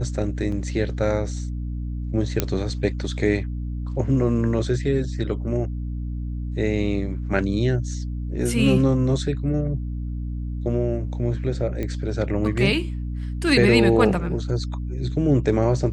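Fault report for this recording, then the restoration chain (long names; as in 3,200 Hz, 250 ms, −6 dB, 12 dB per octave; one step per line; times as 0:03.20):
mains hum 60 Hz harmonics 5 −28 dBFS
0:00.52: drop-out 3.5 ms
0:02.40: click −5 dBFS
0:11.83: click −16 dBFS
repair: click removal
hum removal 60 Hz, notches 5
repair the gap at 0:00.52, 3.5 ms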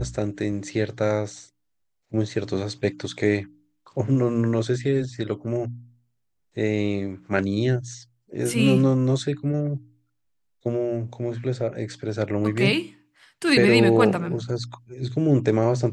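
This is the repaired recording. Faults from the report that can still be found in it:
0:02.40: click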